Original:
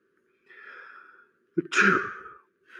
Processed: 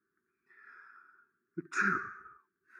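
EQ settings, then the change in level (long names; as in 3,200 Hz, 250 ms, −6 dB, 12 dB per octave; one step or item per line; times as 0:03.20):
phaser with its sweep stopped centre 1,300 Hz, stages 4
−8.5 dB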